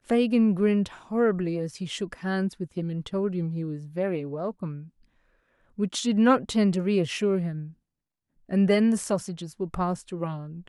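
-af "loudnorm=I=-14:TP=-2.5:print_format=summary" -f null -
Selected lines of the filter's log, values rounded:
Input Integrated:    -26.4 LUFS
Input True Peak:      -6.6 dBTP
Input LRA:             6.0 LU
Input Threshold:     -37.1 LUFS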